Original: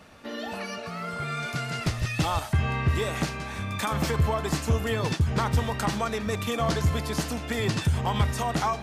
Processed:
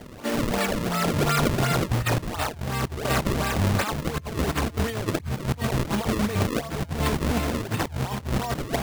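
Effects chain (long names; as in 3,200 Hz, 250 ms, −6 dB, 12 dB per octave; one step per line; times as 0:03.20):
high-pass filter 44 Hz 6 dB per octave
compressor whose output falls as the input rises −31 dBFS, ratio −0.5
sample-and-hold swept by an LFO 33×, swing 160% 2.8 Hz
level +6 dB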